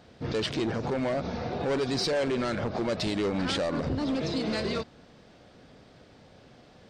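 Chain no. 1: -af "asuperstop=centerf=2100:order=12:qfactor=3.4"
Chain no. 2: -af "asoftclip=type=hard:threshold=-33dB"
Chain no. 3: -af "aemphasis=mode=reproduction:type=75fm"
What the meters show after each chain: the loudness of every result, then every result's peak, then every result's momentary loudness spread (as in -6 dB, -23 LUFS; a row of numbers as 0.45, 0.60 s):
-29.5, -35.0, -29.5 LUFS; -19.0, -33.0, -21.5 dBFS; 5, 21, 4 LU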